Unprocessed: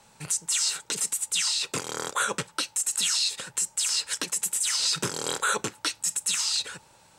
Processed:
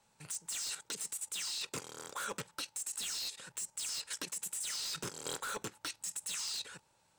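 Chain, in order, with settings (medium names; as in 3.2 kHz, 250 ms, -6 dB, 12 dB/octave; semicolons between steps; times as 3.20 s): wavefolder -21 dBFS; level held to a coarse grid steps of 11 dB; trim -6 dB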